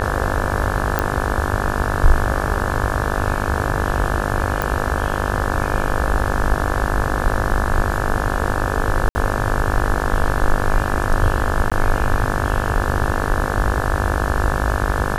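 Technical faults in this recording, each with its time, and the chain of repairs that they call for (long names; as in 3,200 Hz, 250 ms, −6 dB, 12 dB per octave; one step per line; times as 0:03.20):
mains buzz 50 Hz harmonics 35 −23 dBFS
0:00.99: click −4 dBFS
0:04.62: click
0:09.09–0:09.15: drop-out 60 ms
0:11.70–0:11.72: drop-out 16 ms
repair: click removal
hum removal 50 Hz, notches 35
repair the gap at 0:09.09, 60 ms
repair the gap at 0:11.70, 16 ms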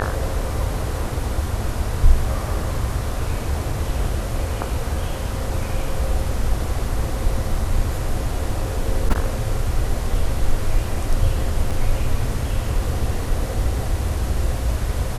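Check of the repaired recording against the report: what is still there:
none of them is left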